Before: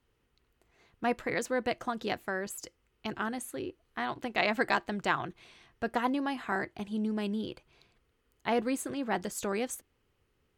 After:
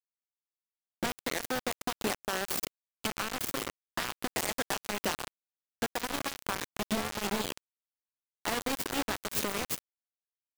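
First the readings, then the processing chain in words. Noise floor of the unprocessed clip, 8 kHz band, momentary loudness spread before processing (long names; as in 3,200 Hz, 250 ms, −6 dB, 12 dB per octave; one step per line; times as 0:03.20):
−75 dBFS, +6.5 dB, 11 LU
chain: stylus tracing distortion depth 0.37 ms
downward compressor 12 to 1, threshold −38 dBFS, peak gain reduction 17 dB
high-shelf EQ 2,600 Hz +8 dB
in parallel at −5.5 dB: sample-and-hold swept by an LFO 36×, swing 100% 0.34 Hz
on the sum: high-pass filter 99 Hz 12 dB per octave
slap from a distant wall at 22 metres, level −11 dB
soft clipping −32 dBFS, distortion −14 dB
bit reduction 6 bits
level +6.5 dB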